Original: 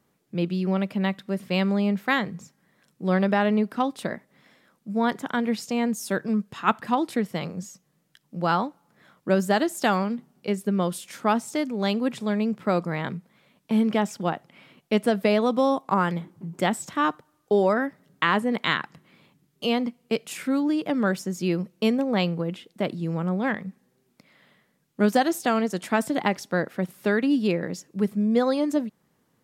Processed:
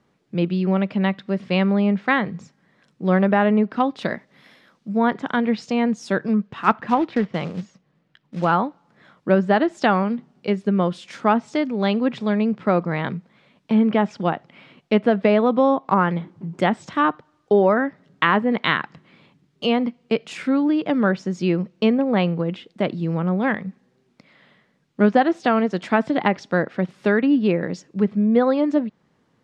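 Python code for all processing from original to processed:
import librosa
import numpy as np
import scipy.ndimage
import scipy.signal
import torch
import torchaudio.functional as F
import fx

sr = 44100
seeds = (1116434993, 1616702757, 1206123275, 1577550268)

y = fx.chain(x, sr, fx.resample_bad(factor=3, down='filtered', up='hold'),
    fx.high_shelf(hz=3200.0, db=10.5), at=(4.01, 4.89))
y = fx.chain(y, sr, fx.lowpass(hz=3200.0, slope=12),
    fx.quant_float(bits=2), at=(6.47, 8.53))
y = scipy.signal.sosfilt(scipy.signal.butter(2, 4900.0, 'lowpass', fs=sr, output='sos'), y)
y = fx.env_lowpass_down(y, sr, base_hz=2500.0, full_db=-18.5)
y = F.gain(torch.from_numpy(y), 4.5).numpy()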